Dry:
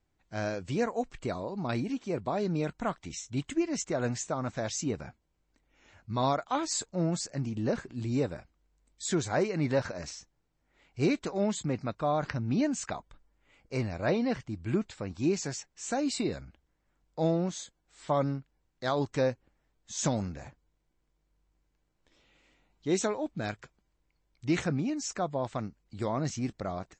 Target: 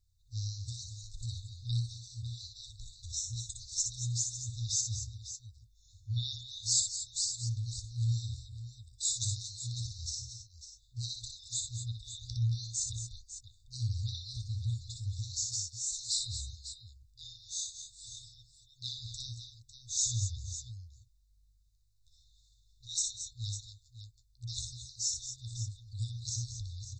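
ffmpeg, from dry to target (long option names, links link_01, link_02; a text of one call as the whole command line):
ffmpeg -i in.wav -af "afftfilt=real='re*(1-between(b*sr/4096,120,3500))':imag='im*(1-between(b*sr/4096,120,3500))':win_size=4096:overlap=0.75,aecho=1:1:60|196|218|231|551:0.531|0.112|0.178|0.282|0.266,volume=4dB" out.wav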